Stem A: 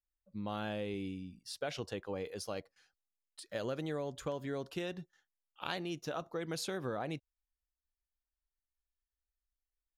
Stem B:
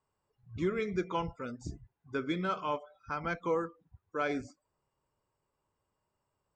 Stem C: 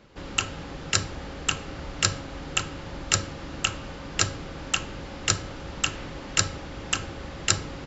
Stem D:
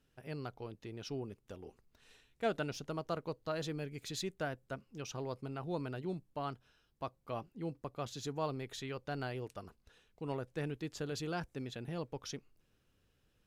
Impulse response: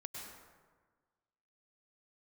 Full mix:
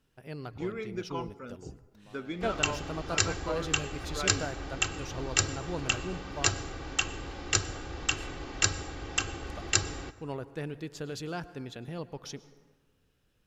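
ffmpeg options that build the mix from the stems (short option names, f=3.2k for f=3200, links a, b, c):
-filter_complex "[0:a]adelay=1600,volume=-17.5dB[a];[1:a]volume=-4.5dB,asplit=2[b][c];[c]volume=-19dB[d];[2:a]aecho=1:1:2.6:0.52,adelay=2250,volume=-5dB,asplit=2[e][f];[f]volume=-10.5dB[g];[3:a]volume=0.5dB,asplit=3[h][i][j];[h]atrim=end=6.84,asetpts=PTS-STARTPTS,afade=t=out:st=6.836:d=0.004:c=hsin[k];[i]atrim=start=6.84:end=9.47,asetpts=PTS-STARTPTS,volume=0[l];[j]atrim=start=9.47,asetpts=PTS-STARTPTS,afade=t=in:d=0.004:c=hsin[m];[k][l][m]concat=n=3:v=0:a=1,asplit=2[n][o];[o]volume=-9.5dB[p];[4:a]atrim=start_sample=2205[q];[d][g][p]amix=inputs=3:normalize=0[r];[r][q]afir=irnorm=-1:irlink=0[s];[a][b][e][n][s]amix=inputs=5:normalize=0"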